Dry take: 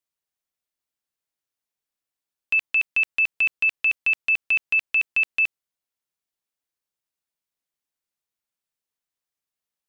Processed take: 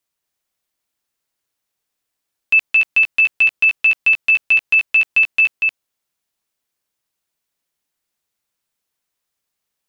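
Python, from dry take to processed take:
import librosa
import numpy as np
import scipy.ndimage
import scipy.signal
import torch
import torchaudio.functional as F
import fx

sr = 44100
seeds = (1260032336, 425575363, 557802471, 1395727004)

p1 = fx.level_steps(x, sr, step_db=10)
p2 = x + (p1 * 10.0 ** (2.0 / 20.0))
p3 = p2 + 10.0 ** (-4.5 / 20.0) * np.pad(p2, (int(237 * sr / 1000.0), 0))[:len(p2)]
y = p3 * 10.0 ** (2.0 / 20.0)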